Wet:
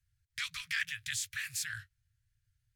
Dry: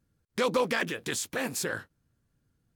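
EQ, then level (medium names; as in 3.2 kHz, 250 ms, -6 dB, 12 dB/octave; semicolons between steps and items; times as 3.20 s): elliptic band-stop 110–1100 Hz, stop band 40 dB; Chebyshev band-stop 160–1800 Hz, order 3; treble shelf 8.2 kHz -6 dB; 0.0 dB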